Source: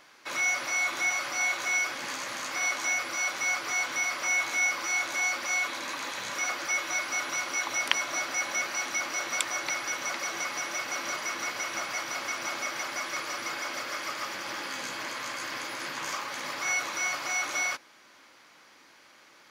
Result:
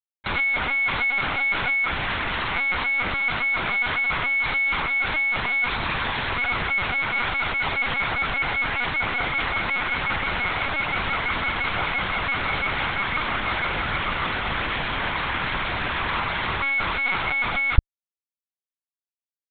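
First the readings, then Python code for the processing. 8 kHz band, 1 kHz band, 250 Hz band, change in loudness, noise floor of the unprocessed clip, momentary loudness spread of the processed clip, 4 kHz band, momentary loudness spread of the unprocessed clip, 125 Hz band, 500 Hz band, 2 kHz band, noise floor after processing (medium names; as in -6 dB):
under -40 dB, +8.0 dB, +10.5 dB, +6.5 dB, -57 dBFS, 4 LU, +5.0 dB, 8 LU, +25.0 dB, +6.5 dB, +7.5 dB, under -85 dBFS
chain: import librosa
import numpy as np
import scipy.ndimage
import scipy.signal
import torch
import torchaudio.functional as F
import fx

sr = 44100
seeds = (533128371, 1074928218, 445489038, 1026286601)

y = fx.fuzz(x, sr, gain_db=40.0, gate_db=-41.0)
y = fx.lpc_vocoder(y, sr, seeds[0], excitation='pitch_kept', order=10)
y = y * 10.0 ** (-7.0 / 20.0)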